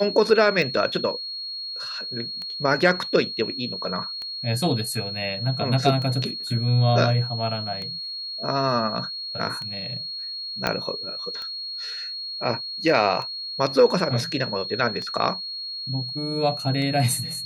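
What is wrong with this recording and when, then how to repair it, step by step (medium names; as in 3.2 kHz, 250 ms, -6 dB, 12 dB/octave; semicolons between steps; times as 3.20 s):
tick 33 1/3 rpm
whine 4.3 kHz -30 dBFS
10.67 s: pop -7 dBFS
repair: de-click; band-stop 4.3 kHz, Q 30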